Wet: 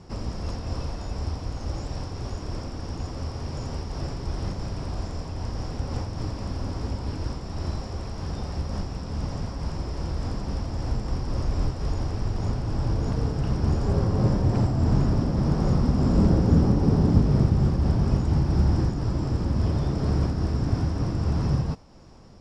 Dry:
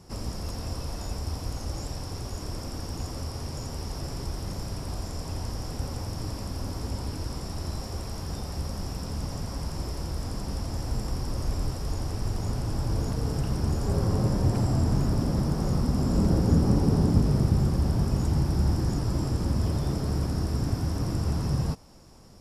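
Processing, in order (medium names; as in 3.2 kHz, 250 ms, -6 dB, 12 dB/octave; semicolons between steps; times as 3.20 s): modulation noise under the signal 34 dB; distance through air 110 m; random flutter of the level, depth 55%; trim +5.5 dB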